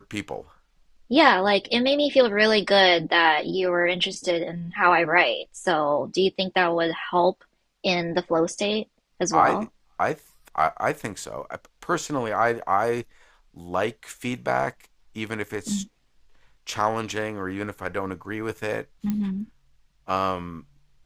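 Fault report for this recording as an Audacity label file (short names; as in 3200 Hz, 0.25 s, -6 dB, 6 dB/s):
19.100000	19.100000	pop -15 dBFS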